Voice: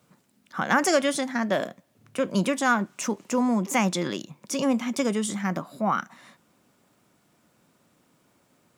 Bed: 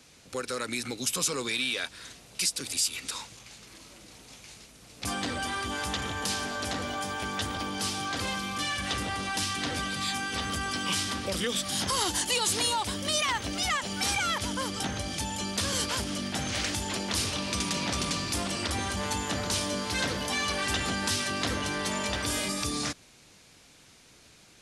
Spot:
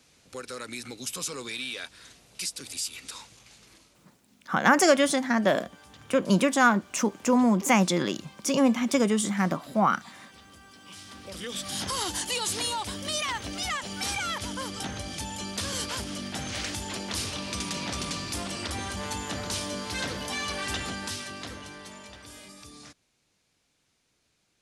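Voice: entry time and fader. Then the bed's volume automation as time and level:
3.95 s, +2.0 dB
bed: 0:03.73 −5 dB
0:04.16 −20.5 dB
0:10.78 −20.5 dB
0:11.67 −2.5 dB
0:20.75 −2.5 dB
0:22.19 −16.5 dB

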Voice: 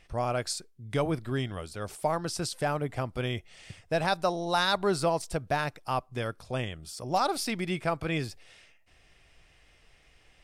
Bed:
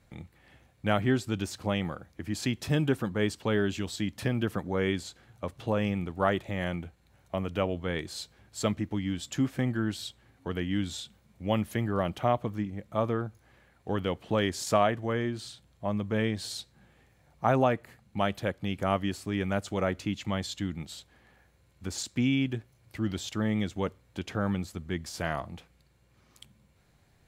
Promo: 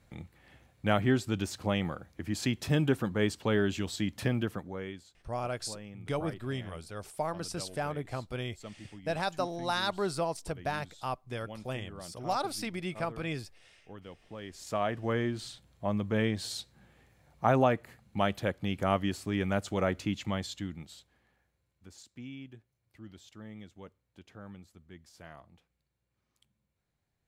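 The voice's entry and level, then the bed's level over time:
5.15 s, −5.0 dB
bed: 0:04.34 −0.5 dB
0:05.10 −17.5 dB
0:14.38 −17.5 dB
0:15.08 −0.5 dB
0:20.18 −0.5 dB
0:22.03 −18 dB

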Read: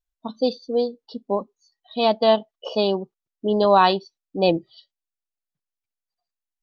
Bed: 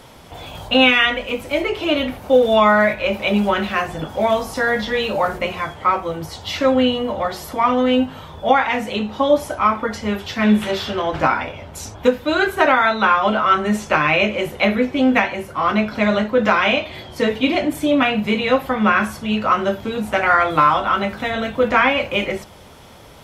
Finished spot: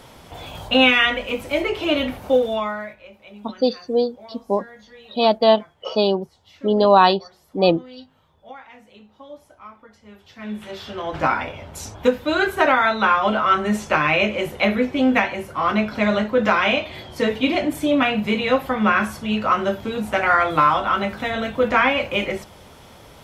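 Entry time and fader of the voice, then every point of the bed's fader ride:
3.20 s, +2.5 dB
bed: 0:02.28 −1.5 dB
0:03.11 −25 dB
0:10.00 −25 dB
0:11.31 −2 dB

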